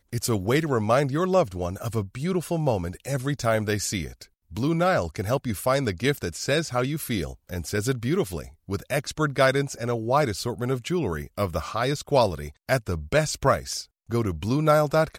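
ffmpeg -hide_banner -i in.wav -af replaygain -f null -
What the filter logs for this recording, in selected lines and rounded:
track_gain = +4.9 dB
track_peak = 0.330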